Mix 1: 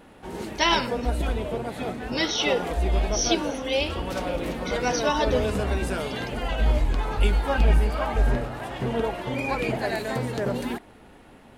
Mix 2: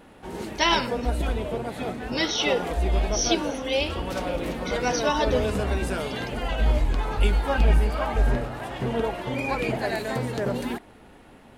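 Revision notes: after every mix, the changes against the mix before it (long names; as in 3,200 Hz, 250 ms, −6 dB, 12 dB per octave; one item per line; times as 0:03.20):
nothing changed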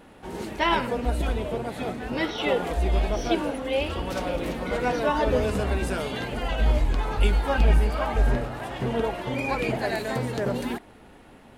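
speech: add low-pass filter 2,300 Hz 12 dB per octave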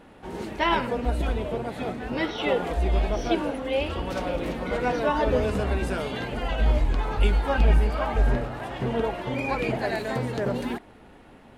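master: add high-shelf EQ 5,900 Hz −7 dB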